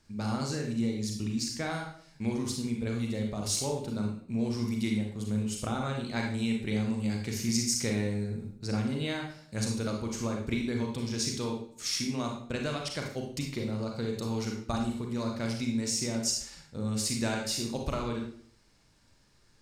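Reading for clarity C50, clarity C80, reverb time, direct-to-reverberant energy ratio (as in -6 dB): 4.0 dB, 8.5 dB, 0.55 s, 0.5 dB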